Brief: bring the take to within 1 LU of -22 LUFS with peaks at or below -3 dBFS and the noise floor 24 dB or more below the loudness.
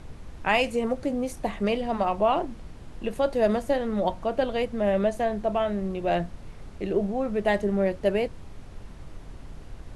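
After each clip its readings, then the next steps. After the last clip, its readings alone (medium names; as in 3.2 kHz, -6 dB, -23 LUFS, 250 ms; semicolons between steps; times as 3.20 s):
noise floor -43 dBFS; noise floor target -51 dBFS; loudness -26.5 LUFS; peak level -9.5 dBFS; loudness target -22.0 LUFS
-> noise print and reduce 8 dB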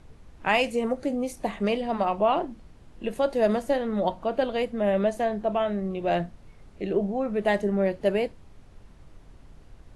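noise floor -51 dBFS; loudness -26.5 LUFS; peak level -9.5 dBFS; loudness target -22.0 LUFS
-> trim +4.5 dB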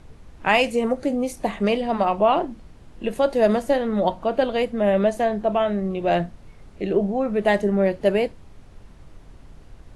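loudness -22.0 LUFS; peak level -5.0 dBFS; noise floor -47 dBFS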